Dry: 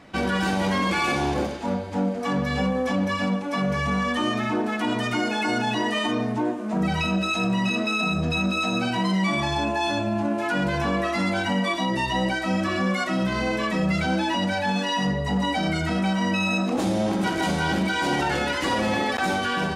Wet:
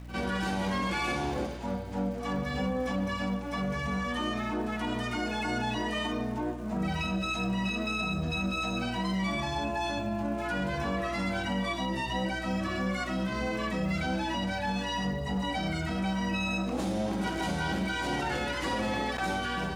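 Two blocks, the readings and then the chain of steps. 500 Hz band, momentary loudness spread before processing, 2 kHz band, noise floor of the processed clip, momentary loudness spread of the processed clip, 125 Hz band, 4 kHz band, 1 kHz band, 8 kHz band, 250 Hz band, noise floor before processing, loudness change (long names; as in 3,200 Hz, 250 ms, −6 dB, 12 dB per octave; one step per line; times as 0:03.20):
−7.5 dB, 2 LU, −7.5 dB, −35 dBFS, 2 LU, −6.5 dB, −7.5 dB, −7.0 dB, −7.0 dB, −7.5 dB, −28 dBFS, −7.0 dB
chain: echo ahead of the sound 51 ms −14 dB
mains hum 60 Hz, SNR 12 dB
surface crackle 360 per second −41 dBFS
level −7.5 dB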